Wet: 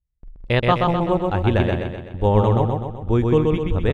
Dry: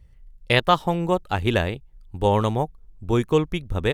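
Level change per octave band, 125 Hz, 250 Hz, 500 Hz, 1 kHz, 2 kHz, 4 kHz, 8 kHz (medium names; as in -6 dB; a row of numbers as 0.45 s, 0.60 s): +6.0 dB, +4.0 dB, +3.0 dB, +1.0 dB, -1.5 dB, -4.0 dB, under -10 dB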